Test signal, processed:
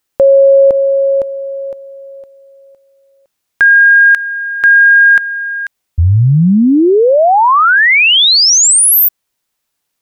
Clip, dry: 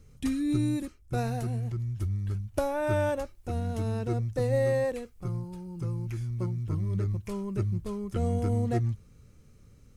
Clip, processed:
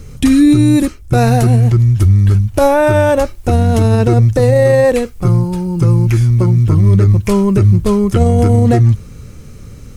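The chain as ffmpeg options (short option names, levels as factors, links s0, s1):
-af "alimiter=level_in=15.8:limit=0.891:release=50:level=0:latency=1,volume=0.841"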